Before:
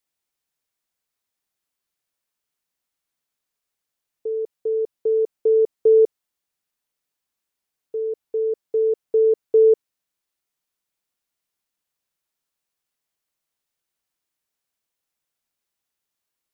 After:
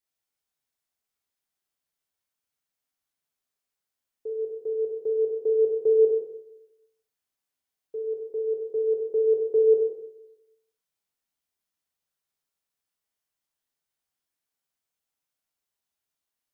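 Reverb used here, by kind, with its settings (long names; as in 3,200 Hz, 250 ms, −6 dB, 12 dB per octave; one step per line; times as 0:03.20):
dense smooth reverb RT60 0.91 s, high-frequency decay 0.85×, DRR −2 dB
level −8 dB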